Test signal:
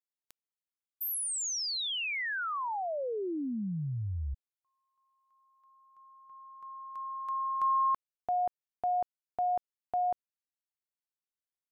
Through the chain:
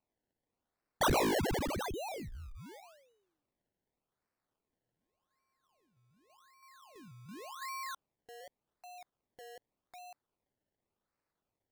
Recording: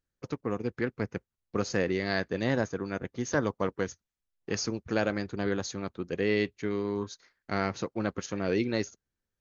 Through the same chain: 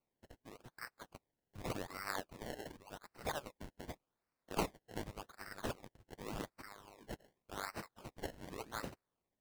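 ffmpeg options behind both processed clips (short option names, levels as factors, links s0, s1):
-af "highpass=f=760:w=0.5412,highpass=f=760:w=1.3066,aderivative,acrusher=samples=25:mix=1:aa=0.000001:lfo=1:lforange=25:lforate=0.87,volume=1.33"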